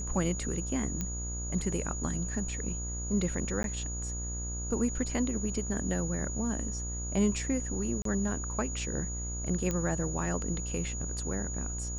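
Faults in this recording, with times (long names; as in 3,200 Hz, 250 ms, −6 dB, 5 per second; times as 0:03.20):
mains buzz 60 Hz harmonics 28 −37 dBFS
whistle 6,800 Hz −38 dBFS
0:01.01: click −19 dBFS
0:03.63–0:03.64: drop-out
0:08.02–0:08.05: drop-out 33 ms
0:09.71: click −18 dBFS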